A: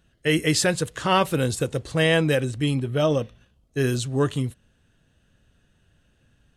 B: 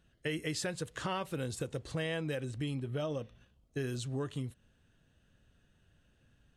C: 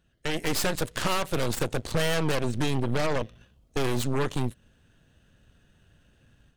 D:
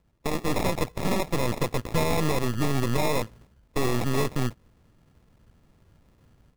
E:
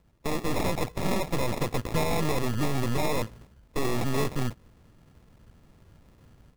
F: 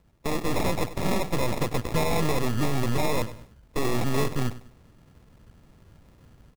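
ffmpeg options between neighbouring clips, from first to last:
ffmpeg -i in.wav -af "highshelf=frequency=8600:gain=-4.5,acompressor=threshold=-29dB:ratio=4,volume=-5.5dB" out.wav
ffmpeg -i in.wav -af "dynaudnorm=framelen=270:gausssize=3:maxgain=7.5dB,aeval=exprs='0.106*(cos(1*acos(clip(val(0)/0.106,-1,1)))-cos(1*PI/2))+0.0376*(cos(6*acos(clip(val(0)/0.106,-1,1)))-cos(6*PI/2))':channel_layout=same" out.wav
ffmpeg -i in.wav -af "acrusher=samples=29:mix=1:aa=0.000001,volume=1.5dB" out.wav
ffmpeg -i in.wav -af "asoftclip=type=tanh:threshold=-23dB,volume=3.5dB" out.wav
ffmpeg -i in.wav -af "aecho=1:1:98|196|294:0.168|0.0537|0.0172,volume=1.5dB" out.wav

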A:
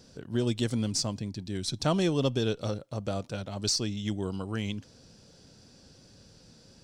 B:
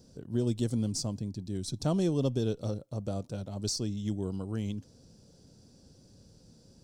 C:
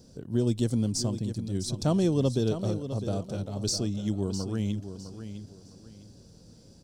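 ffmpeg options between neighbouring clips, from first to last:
ffmpeg -i in.wav -af "equalizer=frequency=2100:width_type=o:width=2.5:gain=-13.5" out.wav
ffmpeg -i in.wav -af "aecho=1:1:656|1312|1968:0.299|0.0836|0.0234,volume=3.5dB" out.wav

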